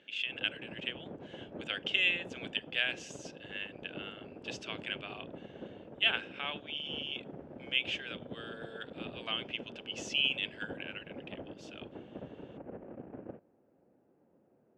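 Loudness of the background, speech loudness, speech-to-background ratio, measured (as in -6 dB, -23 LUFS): -48.0 LUFS, -35.0 LUFS, 13.0 dB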